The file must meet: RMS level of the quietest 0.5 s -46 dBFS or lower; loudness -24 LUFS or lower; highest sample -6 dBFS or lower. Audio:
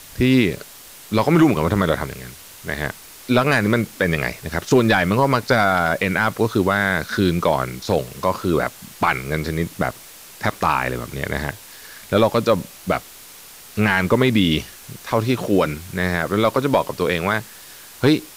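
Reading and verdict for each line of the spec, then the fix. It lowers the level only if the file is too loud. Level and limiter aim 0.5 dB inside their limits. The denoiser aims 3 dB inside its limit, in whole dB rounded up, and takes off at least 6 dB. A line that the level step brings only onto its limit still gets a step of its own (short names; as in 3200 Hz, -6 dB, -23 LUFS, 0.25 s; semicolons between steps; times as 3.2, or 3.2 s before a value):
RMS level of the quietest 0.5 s -42 dBFS: fail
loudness -20.0 LUFS: fail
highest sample -5.5 dBFS: fail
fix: gain -4.5 dB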